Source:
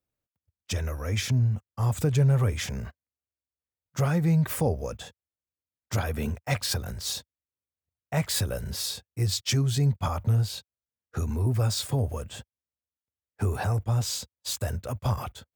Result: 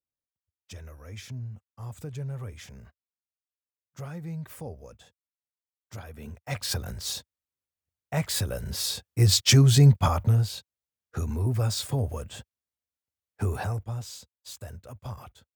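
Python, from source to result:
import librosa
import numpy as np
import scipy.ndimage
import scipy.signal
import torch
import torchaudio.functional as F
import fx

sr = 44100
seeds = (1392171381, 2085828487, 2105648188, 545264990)

y = fx.gain(x, sr, db=fx.line((6.18, -13.5), (6.71, -1.0), (8.6, -1.0), (9.34, 7.5), (9.89, 7.5), (10.54, -1.0), (13.56, -1.0), (14.09, -11.0)))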